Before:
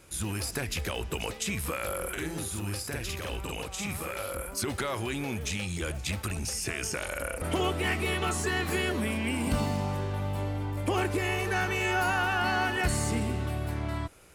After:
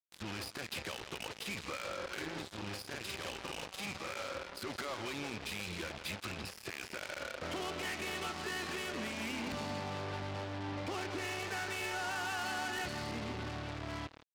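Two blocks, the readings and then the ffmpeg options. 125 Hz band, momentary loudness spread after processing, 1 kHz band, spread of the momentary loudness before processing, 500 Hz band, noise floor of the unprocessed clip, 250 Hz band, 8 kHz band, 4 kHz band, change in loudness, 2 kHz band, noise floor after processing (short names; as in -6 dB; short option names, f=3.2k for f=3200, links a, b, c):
-14.0 dB, 6 LU, -8.5 dB, 7 LU, -9.5 dB, -39 dBFS, -10.0 dB, -12.0 dB, -5.5 dB, -9.0 dB, -8.0 dB, -54 dBFS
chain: -filter_complex "[0:a]lowshelf=f=220:g=-6,asplit=2[a][b];[b]aecho=0:1:163|326|489|652:0.266|0.0958|0.0345|0.0124[c];[a][c]amix=inputs=2:normalize=0,acompressor=threshold=-32dB:ratio=3,highpass=f=66:w=0.5412,highpass=f=66:w=1.3066,aresample=11025,asoftclip=type=hard:threshold=-34.5dB,aresample=44100,bandreject=f=450:w=14,acrusher=bits=5:mix=0:aa=0.5,lowshelf=f=110:g=-6.5,volume=-1.5dB"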